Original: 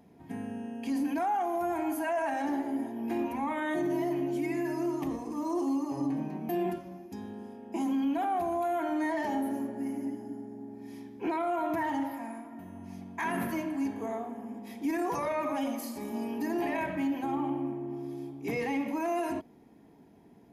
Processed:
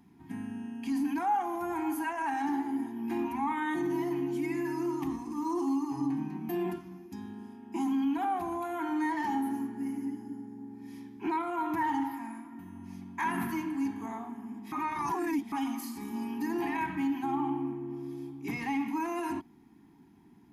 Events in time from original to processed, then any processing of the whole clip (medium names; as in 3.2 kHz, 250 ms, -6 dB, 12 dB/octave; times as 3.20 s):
14.72–15.52 s: reverse
whole clip: dynamic bell 790 Hz, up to +5 dB, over -42 dBFS, Q 1.8; Chebyshev band-stop 340–890 Hz, order 2